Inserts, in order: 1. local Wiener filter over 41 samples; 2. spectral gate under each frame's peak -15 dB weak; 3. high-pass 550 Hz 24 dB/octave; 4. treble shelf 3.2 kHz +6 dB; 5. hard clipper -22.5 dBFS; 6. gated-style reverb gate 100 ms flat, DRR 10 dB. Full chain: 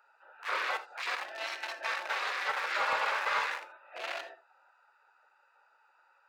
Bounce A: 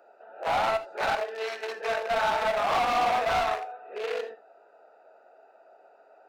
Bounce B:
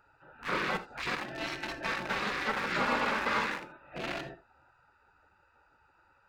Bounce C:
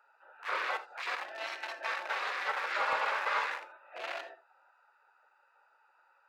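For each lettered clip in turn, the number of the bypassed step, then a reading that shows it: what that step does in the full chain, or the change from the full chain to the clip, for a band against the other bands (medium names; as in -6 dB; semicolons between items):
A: 2, 250 Hz band +12.5 dB; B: 3, 250 Hz band +21.5 dB; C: 4, 8 kHz band -4.5 dB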